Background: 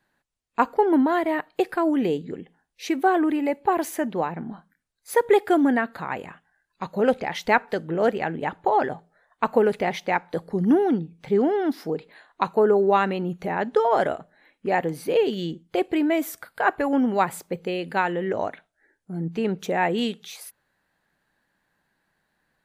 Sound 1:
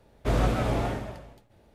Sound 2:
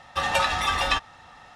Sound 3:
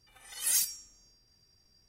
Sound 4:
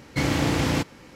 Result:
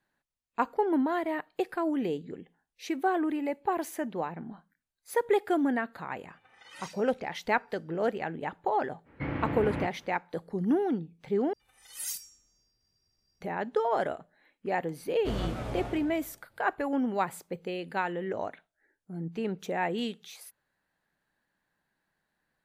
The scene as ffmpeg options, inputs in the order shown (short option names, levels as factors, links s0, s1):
-filter_complex "[3:a]asplit=2[s0][s1];[0:a]volume=0.422[s2];[s0]highpass=130,lowpass=2200[s3];[4:a]lowpass=f=2300:w=0.5412,lowpass=f=2300:w=1.3066[s4];[s2]asplit=2[s5][s6];[s5]atrim=end=11.534[s7];[s1]atrim=end=1.88,asetpts=PTS-STARTPTS,volume=0.376[s8];[s6]atrim=start=13.406[s9];[s3]atrim=end=1.88,asetpts=PTS-STARTPTS,volume=0.841,afade=t=in:d=0.004:c=hsin,afade=t=out:st=1.876:d=0.004:c=hsin,adelay=6290[s10];[s4]atrim=end=1.15,asetpts=PTS-STARTPTS,volume=0.335,afade=t=in:d=0.05,afade=t=out:st=1.1:d=0.05,adelay=9040[s11];[1:a]atrim=end=1.74,asetpts=PTS-STARTPTS,volume=0.335,afade=t=in:d=0.004:c=hsin,afade=t=out:st=1.736:d=0.004:c=hsin,adelay=15000[s12];[s7][s8]acrossfade=d=0.004:c1=hsin:c2=hsin[s13];[s13][s9]acrossfade=d=0.004:c1=hsin:c2=hsin[s14];[s14][s10][s11][s12]amix=inputs=4:normalize=0"